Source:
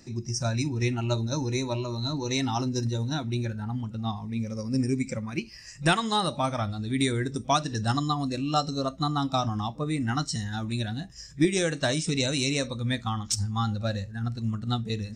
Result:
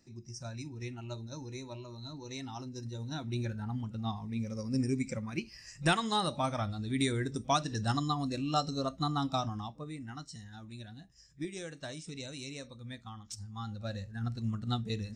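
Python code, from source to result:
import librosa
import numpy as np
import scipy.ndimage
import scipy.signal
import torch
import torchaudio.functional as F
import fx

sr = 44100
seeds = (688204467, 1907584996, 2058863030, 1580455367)

y = fx.gain(x, sr, db=fx.line((2.77, -14.5), (3.42, -5.0), (9.29, -5.0), (10.1, -16.5), (13.39, -16.5), (14.21, -5.0)))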